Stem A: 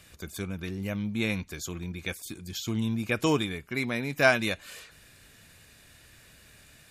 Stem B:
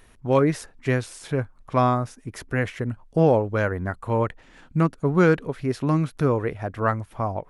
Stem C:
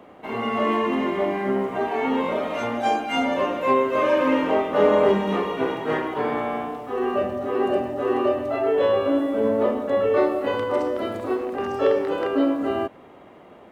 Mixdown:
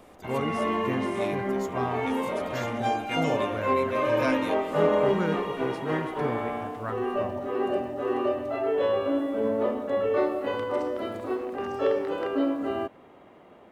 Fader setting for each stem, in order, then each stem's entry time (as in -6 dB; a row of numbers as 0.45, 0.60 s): -10.0, -12.0, -5.0 dB; 0.00, 0.00, 0.00 s